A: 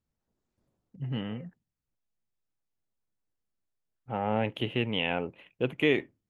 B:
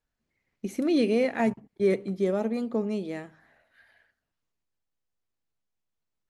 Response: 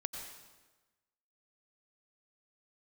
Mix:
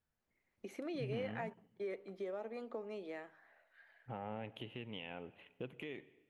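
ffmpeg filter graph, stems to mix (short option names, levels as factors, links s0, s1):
-filter_complex "[0:a]acompressor=threshold=0.0126:ratio=2.5,alimiter=level_in=1.33:limit=0.0631:level=0:latency=1:release=359,volume=0.75,volume=0.447,asplit=2[s0][s1];[s1]volume=0.237[s2];[1:a]acrossover=split=390 3400:gain=0.112 1 0.224[s3][s4][s5];[s3][s4][s5]amix=inputs=3:normalize=0,acompressor=threshold=0.0126:ratio=3,volume=0.631[s6];[2:a]atrim=start_sample=2205[s7];[s2][s7]afir=irnorm=-1:irlink=0[s8];[s0][s6][s8]amix=inputs=3:normalize=0"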